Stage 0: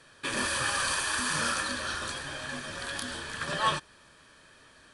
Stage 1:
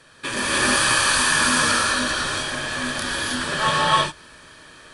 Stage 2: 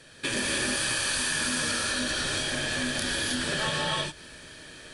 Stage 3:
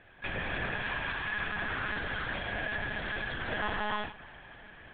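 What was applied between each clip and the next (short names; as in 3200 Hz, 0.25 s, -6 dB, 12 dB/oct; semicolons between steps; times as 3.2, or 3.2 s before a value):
non-linear reverb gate 0.34 s rising, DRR -5.5 dB; gain +4.5 dB
bell 1100 Hz -11 dB 0.75 oct; compressor, threshold -27 dBFS, peak gain reduction 10 dB; gain +1.5 dB
three-band isolator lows -15 dB, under 440 Hz, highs -19 dB, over 2300 Hz; Schroeder reverb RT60 3.3 s, combs from 33 ms, DRR 16.5 dB; monotone LPC vocoder at 8 kHz 210 Hz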